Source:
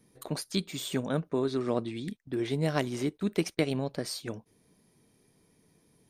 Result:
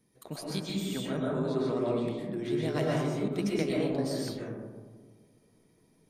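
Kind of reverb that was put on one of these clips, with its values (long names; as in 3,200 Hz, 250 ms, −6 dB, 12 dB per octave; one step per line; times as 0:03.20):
comb and all-pass reverb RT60 1.6 s, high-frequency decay 0.25×, pre-delay 85 ms, DRR −4.5 dB
level −6.5 dB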